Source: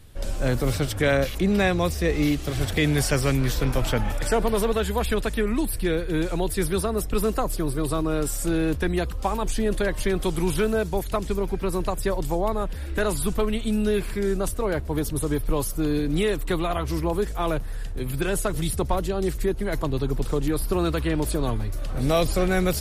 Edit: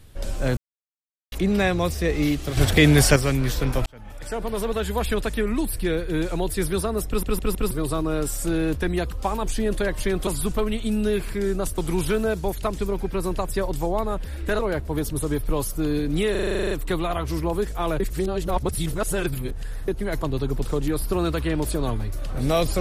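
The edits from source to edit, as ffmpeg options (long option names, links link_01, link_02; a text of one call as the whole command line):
ffmpeg -i in.wav -filter_complex "[0:a]asplit=25[link_01][link_02][link_03][link_04][link_05][link_06][link_07][link_08][link_09][link_10][link_11][link_12][link_13][link_14][link_15][link_16][link_17][link_18][link_19][link_20][link_21][link_22][link_23][link_24][link_25];[link_01]atrim=end=0.57,asetpts=PTS-STARTPTS,afade=type=out:start_time=0.566:duration=0.004:curve=hsin[link_26];[link_02]atrim=start=0.57:end=1.32,asetpts=PTS-STARTPTS,volume=0[link_27];[link_03]atrim=start=1.32:end=2.572,asetpts=PTS-STARTPTS,afade=type=in:duration=0.004:curve=hsin[link_28];[link_04]atrim=start=2.568:end=3.162,asetpts=PTS-STARTPTS,volume=6.5dB[link_29];[link_05]atrim=start=3.158:end=3.86,asetpts=PTS-STARTPTS,afade=type=out:start_time=0.698:duration=0.004:curve=hsin[link_30];[link_06]atrim=start=3.86:end=7.232,asetpts=PTS-STARTPTS,afade=type=in:duration=1.13[link_31];[link_07]atrim=start=7.068:end=7.232[link_32];[link_08]atrim=start=7.068:end=7.232[link_33];[link_09]atrim=start=7.068:end=7.232[link_34];[link_10]atrim=start=7.708:end=10.272[link_35];[link_11]atrim=start=13.078:end=14.592[link_36];[link_12]atrim=start=10.268:end=13.082[link_37];[link_13]atrim=start=14.588:end=16.352[link_38];[link_14]atrim=start=16.308:end=16.352[link_39];[link_15]atrim=start=16.308:end=16.352[link_40];[link_16]atrim=start=16.308:end=16.352[link_41];[link_17]atrim=start=16.308:end=16.352[link_42];[link_18]atrim=start=16.308:end=16.352[link_43];[link_19]atrim=start=16.308:end=16.352[link_44];[link_20]atrim=start=16.308:end=16.352[link_45];[link_21]atrim=start=16.308:end=16.352[link_46];[link_22]atrim=start=16.308:end=16.352[link_47];[link_23]atrim=start=16.308:end=17.602[link_48];[link_24]atrim=start=17.598:end=19.482,asetpts=PTS-STARTPTS,areverse[link_49];[link_25]atrim=start=19.478[link_50];[link_26][link_27][link_28]concat=n=3:v=0:a=1[link_51];[link_51][link_29]acrossfade=duration=0.004:curve1=hsin:curve2=hsin[link_52];[link_30][link_31]concat=n=2:v=0:a=1[link_53];[link_52][link_53]acrossfade=duration=0.004:curve1=hsin:curve2=hsin[link_54];[link_54][link_32]acrossfade=duration=0.004:curve1=hsin:curve2=hsin[link_55];[link_55][link_33]acrossfade=duration=0.004:curve1=hsin:curve2=hsin[link_56];[link_56][link_34]acrossfade=duration=0.004:curve1=hsin:curve2=hsin[link_57];[link_57][link_35]acrossfade=duration=0.004:curve1=hsin:curve2=hsin[link_58];[link_58][link_36]acrossfade=duration=0.004:curve1=hsin:curve2=hsin[link_59];[link_59][link_37]acrossfade=duration=0.004:curve1=hsin:curve2=hsin[link_60];[link_60][link_38]acrossfade=duration=0.004:curve1=hsin:curve2=hsin[link_61];[link_61][link_39]acrossfade=duration=0.004:curve1=hsin:curve2=hsin[link_62];[link_62][link_40]acrossfade=duration=0.004:curve1=hsin:curve2=hsin[link_63];[link_63][link_41]acrossfade=duration=0.004:curve1=hsin:curve2=hsin[link_64];[link_64][link_42]acrossfade=duration=0.004:curve1=hsin:curve2=hsin[link_65];[link_65][link_43]acrossfade=duration=0.004:curve1=hsin:curve2=hsin[link_66];[link_66][link_44]acrossfade=duration=0.004:curve1=hsin:curve2=hsin[link_67];[link_67][link_45]acrossfade=duration=0.004:curve1=hsin:curve2=hsin[link_68];[link_68][link_46]acrossfade=duration=0.004:curve1=hsin:curve2=hsin[link_69];[link_69][link_47]acrossfade=duration=0.004:curve1=hsin:curve2=hsin[link_70];[link_70][link_48]acrossfade=duration=0.004:curve1=hsin:curve2=hsin[link_71];[link_71][link_49]acrossfade=duration=0.004:curve1=hsin:curve2=hsin[link_72];[link_72][link_50]acrossfade=duration=0.004:curve1=hsin:curve2=hsin" out.wav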